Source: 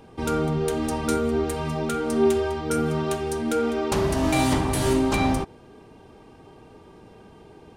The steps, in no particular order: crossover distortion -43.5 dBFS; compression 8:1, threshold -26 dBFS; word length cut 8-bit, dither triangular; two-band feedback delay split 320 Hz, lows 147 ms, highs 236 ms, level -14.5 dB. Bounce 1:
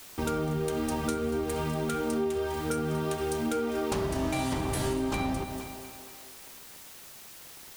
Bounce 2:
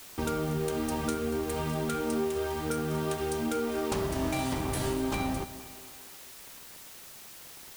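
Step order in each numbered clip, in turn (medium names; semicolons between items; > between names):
crossover distortion > two-band feedback delay > word length cut > compression; compression > crossover distortion > two-band feedback delay > word length cut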